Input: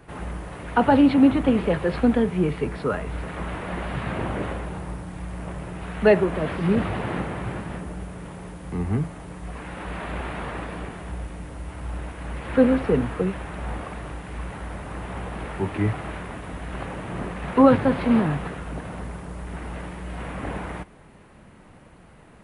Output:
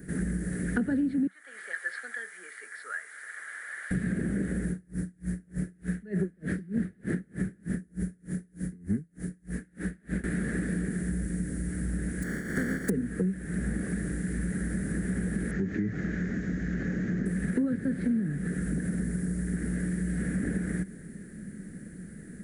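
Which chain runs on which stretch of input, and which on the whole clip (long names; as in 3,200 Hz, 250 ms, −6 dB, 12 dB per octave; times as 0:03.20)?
0:01.27–0:03.91: high-pass filter 1,000 Hz 24 dB per octave + high-shelf EQ 3,500 Hz −8 dB + notch filter 2,600 Hz, Q 9.6
0:04.70–0:10.24: parametric band 8,500 Hz −3 dB 0.43 octaves + tremolo with a sine in dB 3.3 Hz, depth 36 dB
0:12.22–0:12.88: compressing power law on the bin magnitudes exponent 0.22 + downward compressor 1.5 to 1, threshold −26 dBFS + Savitzky-Golay smoothing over 41 samples
0:15.51–0:17.26: Chebyshev low-pass filter 6,800 Hz, order 6 + downward compressor 2.5 to 1, threshold −29 dBFS
whole clip: drawn EQ curve 120 Hz 0 dB, 190 Hz +14 dB, 270 Hz +7 dB, 430 Hz +2 dB, 1,000 Hz −26 dB, 1,700 Hz +7 dB, 2,700 Hz −15 dB, 8,100 Hz +11 dB; downward compressor 8 to 1, threshold −26 dBFS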